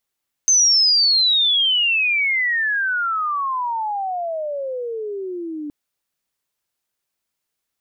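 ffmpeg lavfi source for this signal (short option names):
-f lavfi -i "aevalsrc='pow(10,(-11-15*t/5.22)/20)*sin(2*PI*6300*5.22/log(290/6300)*(exp(log(290/6300)*t/5.22)-1))':d=5.22:s=44100"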